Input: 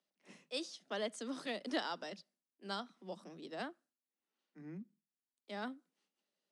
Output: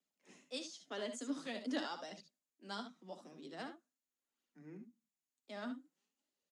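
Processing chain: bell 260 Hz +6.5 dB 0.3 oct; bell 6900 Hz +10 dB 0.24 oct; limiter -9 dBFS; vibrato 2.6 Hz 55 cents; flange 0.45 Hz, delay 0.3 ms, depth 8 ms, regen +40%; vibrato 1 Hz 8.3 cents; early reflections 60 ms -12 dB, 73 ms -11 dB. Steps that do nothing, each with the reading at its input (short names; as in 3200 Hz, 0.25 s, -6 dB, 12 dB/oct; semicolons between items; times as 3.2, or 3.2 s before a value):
limiter -9 dBFS: input peak -23.0 dBFS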